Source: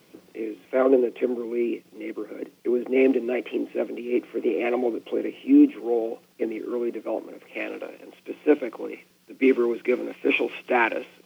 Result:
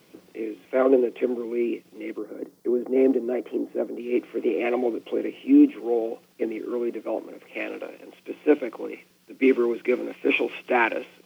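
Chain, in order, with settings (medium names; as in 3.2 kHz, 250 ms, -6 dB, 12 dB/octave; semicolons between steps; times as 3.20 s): 2.18–4.00 s: peaking EQ 2.6 kHz -14 dB 0.96 oct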